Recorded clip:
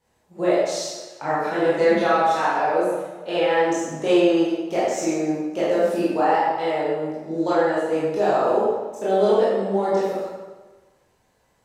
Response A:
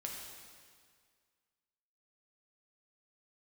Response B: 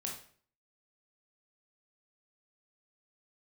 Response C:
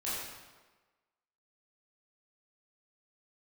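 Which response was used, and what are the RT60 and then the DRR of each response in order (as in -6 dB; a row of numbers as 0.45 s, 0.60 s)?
C; 1.9 s, 0.50 s, 1.3 s; -1.5 dB, -1.5 dB, -10.5 dB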